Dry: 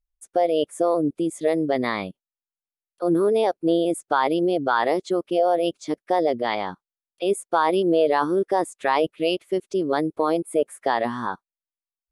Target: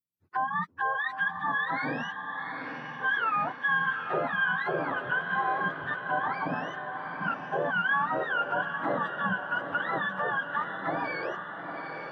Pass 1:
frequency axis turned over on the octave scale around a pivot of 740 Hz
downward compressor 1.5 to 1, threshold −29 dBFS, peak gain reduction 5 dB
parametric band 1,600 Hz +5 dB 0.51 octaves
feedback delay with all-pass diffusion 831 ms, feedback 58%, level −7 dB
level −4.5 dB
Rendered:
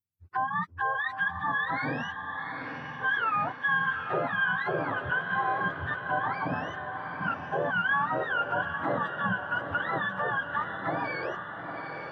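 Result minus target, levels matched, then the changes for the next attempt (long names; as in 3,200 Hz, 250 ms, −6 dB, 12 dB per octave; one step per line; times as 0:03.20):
125 Hz band +3.5 dB
add after downward compressor: high-pass filter 150 Hz 24 dB per octave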